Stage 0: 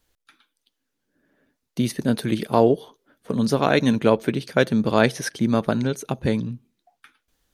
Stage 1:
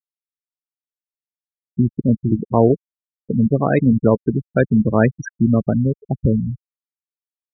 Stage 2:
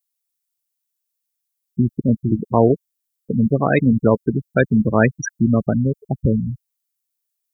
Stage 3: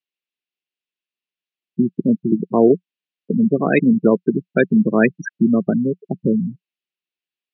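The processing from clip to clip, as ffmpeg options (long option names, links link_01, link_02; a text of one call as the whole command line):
ffmpeg -i in.wav -af "afftfilt=real='re*gte(hypot(re,im),0.224)':imag='im*gte(hypot(re,im),0.224)':win_size=1024:overlap=0.75,crystalizer=i=2.5:c=0,aemphasis=mode=reproduction:type=bsi" out.wav
ffmpeg -i in.wav -af "crystalizer=i=5.5:c=0,volume=-1dB" out.wav
ffmpeg -i in.wav -af "highpass=frequency=180:width=0.5412,highpass=frequency=180:width=1.3066,equalizer=frequency=180:width_type=q:width=4:gain=6,equalizer=frequency=370:width_type=q:width=4:gain=5,equalizer=frequency=570:width_type=q:width=4:gain=-3,equalizer=frequency=870:width_type=q:width=4:gain=-8,equalizer=frequency=1300:width_type=q:width=4:gain=-5,equalizer=frequency=2700:width_type=q:width=4:gain=7,lowpass=frequency=3700:width=0.5412,lowpass=frequency=3700:width=1.3066,volume=1dB" out.wav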